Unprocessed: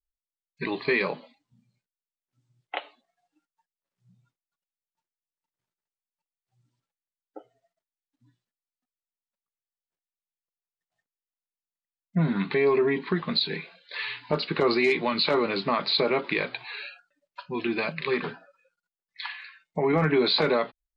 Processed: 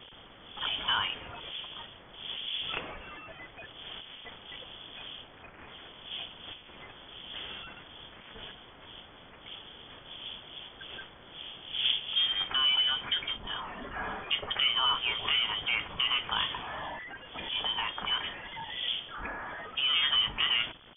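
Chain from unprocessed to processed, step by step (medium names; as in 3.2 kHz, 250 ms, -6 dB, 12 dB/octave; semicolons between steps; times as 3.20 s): zero-crossing glitches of -17.5 dBFS; wind noise 370 Hz -39 dBFS; frequency inversion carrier 3.4 kHz; trim -5 dB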